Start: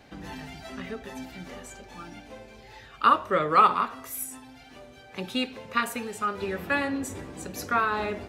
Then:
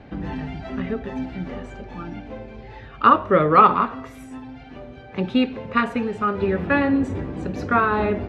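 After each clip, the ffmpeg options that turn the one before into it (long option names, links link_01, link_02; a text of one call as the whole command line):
ffmpeg -i in.wav -af "lowpass=2800,lowshelf=frequency=480:gain=9.5,volume=4dB" out.wav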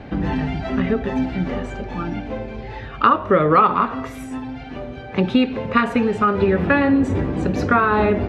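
ffmpeg -i in.wav -af "acompressor=threshold=-21dB:ratio=3,volume=7.5dB" out.wav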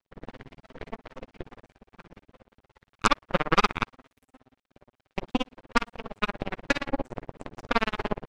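ffmpeg -i in.wav -af "tremolo=f=17:d=0.94,aeval=exprs='sgn(val(0))*max(abs(val(0))-0.0266,0)':channel_layout=same,aeval=exprs='0.841*(cos(1*acos(clip(val(0)/0.841,-1,1)))-cos(1*PI/2))+0.0944*(cos(3*acos(clip(val(0)/0.841,-1,1)))-cos(3*PI/2))+0.119*(cos(5*acos(clip(val(0)/0.841,-1,1)))-cos(5*PI/2))+0.0944*(cos(6*acos(clip(val(0)/0.841,-1,1)))-cos(6*PI/2))+0.188*(cos(7*acos(clip(val(0)/0.841,-1,1)))-cos(7*PI/2))':channel_layout=same,volume=-3.5dB" out.wav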